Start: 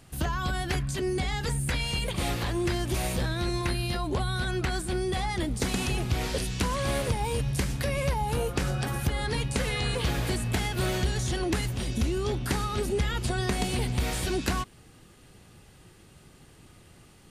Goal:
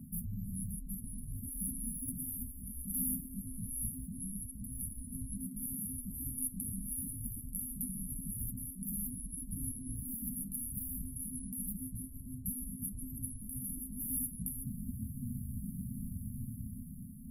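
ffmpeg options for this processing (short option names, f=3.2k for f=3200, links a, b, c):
-af "flanger=delay=2.2:depth=6.5:regen=1:speed=0.82:shape=triangular,bandreject=f=363.1:t=h:w=4,bandreject=f=726.2:t=h:w=4,bandreject=f=1.0893k:t=h:w=4,bandreject=f=1.4524k:t=h:w=4,bandreject=f=1.8155k:t=h:w=4,bandreject=f=2.1786k:t=h:w=4,bandreject=f=2.5417k:t=h:w=4,bandreject=f=2.9048k:t=h:w=4,bandreject=f=3.2679k:t=h:w=4,bandreject=f=3.631k:t=h:w=4,bandreject=f=3.9941k:t=h:w=4,bandreject=f=4.3572k:t=h:w=4,bandreject=f=4.7203k:t=h:w=4,bandreject=f=5.0834k:t=h:w=4,bandreject=f=5.4465k:t=h:w=4,bandreject=f=5.8096k:t=h:w=4,bandreject=f=6.1727k:t=h:w=4,bandreject=f=6.5358k:t=h:w=4,bandreject=f=6.8989k:t=h:w=4,bandreject=f=7.262k:t=h:w=4,bandreject=f=7.6251k:t=h:w=4,bandreject=f=7.9882k:t=h:w=4,areverse,acompressor=threshold=-37dB:ratio=10,areverse,aeval=exprs='val(0)*sin(2*PI*240*n/s)':c=same,afftfilt=real='re*(1-between(b*sr/4096,260,10000))':imag='im*(1-between(b*sr/4096,260,10000))':win_size=4096:overlap=0.75,dynaudnorm=f=170:g=11:m=7dB,afftfilt=real='re*lt(hypot(re,im),0.0282)':imag='im*lt(hypot(re,im),0.0282)':win_size=1024:overlap=0.75,volume=16dB"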